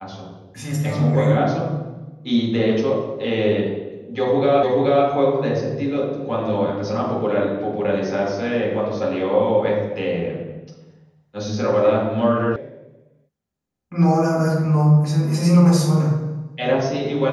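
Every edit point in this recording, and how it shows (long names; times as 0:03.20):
0:04.63: the same again, the last 0.43 s
0:12.56: cut off before it has died away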